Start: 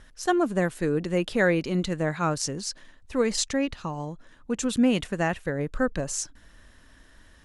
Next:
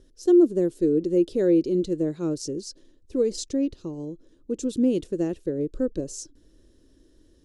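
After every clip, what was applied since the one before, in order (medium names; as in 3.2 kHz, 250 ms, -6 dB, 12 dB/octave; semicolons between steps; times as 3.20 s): FFT filter 220 Hz 0 dB, 340 Hz +14 dB, 520 Hz +4 dB, 750 Hz -12 dB, 2 kHz -17 dB, 3.6 kHz -5 dB, 5.2 kHz -1 dB, 9.8 kHz -4 dB; trim -4.5 dB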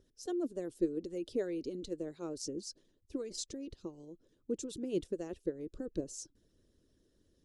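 harmonic-percussive split harmonic -14 dB; trim -6 dB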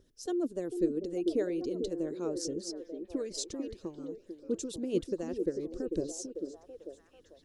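repeats whose band climbs or falls 444 ms, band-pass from 330 Hz, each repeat 0.7 oct, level -4 dB; trim +3.5 dB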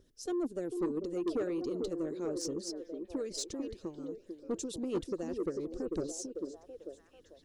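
saturation -27 dBFS, distortion -14 dB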